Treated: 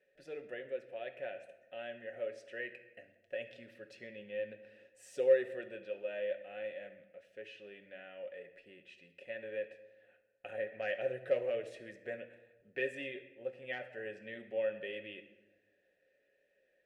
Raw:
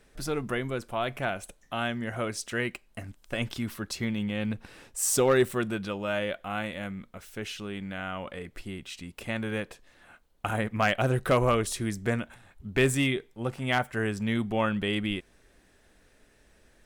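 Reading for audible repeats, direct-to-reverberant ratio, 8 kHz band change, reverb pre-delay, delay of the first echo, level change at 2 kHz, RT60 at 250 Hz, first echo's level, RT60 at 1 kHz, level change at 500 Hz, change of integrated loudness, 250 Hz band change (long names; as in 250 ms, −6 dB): no echo audible, 5.0 dB, below −30 dB, 5 ms, no echo audible, −12.0 dB, 1.5 s, no echo audible, 1.0 s, −6.0 dB, −10.0 dB, −22.0 dB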